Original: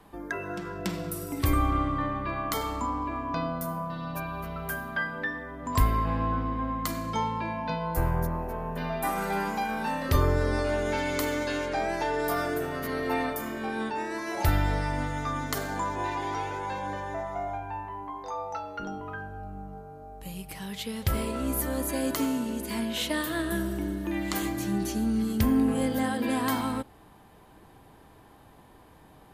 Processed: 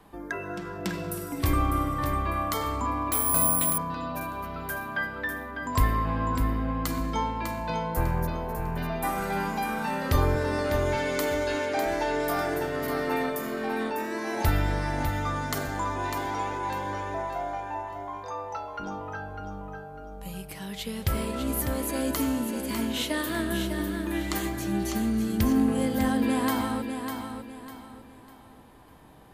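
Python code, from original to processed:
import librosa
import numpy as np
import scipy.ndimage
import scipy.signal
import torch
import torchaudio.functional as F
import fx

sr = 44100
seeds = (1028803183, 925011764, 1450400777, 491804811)

y = fx.highpass(x, sr, hz=83.0, slope=12, at=(10.35, 11.86))
y = fx.echo_feedback(y, sr, ms=600, feedback_pct=33, wet_db=-7.0)
y = fx.resample_bad(y, sr, factor=4, down='none', up='zero_stuff', at=(3.12, 3.78))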